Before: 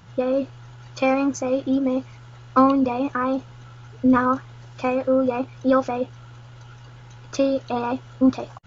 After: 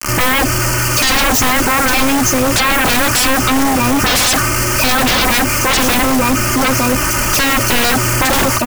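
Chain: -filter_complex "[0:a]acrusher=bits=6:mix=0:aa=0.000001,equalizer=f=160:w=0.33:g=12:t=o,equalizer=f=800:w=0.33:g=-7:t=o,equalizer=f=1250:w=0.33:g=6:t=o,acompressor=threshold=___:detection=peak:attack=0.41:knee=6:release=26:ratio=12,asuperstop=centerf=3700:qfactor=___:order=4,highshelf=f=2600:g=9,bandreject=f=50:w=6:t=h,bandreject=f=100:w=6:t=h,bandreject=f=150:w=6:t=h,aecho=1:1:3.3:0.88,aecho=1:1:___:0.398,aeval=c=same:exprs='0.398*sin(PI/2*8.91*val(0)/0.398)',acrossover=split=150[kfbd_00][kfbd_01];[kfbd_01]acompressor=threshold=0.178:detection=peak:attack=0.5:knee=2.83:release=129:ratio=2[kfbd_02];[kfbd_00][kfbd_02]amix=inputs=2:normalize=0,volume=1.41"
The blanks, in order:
0.126, 2.1, 911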